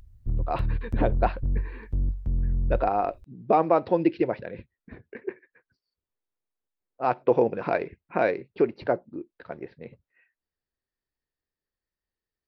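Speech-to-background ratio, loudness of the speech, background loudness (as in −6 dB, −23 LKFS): 4.0 dB, −26.5 LKFS, −30.5 LKFS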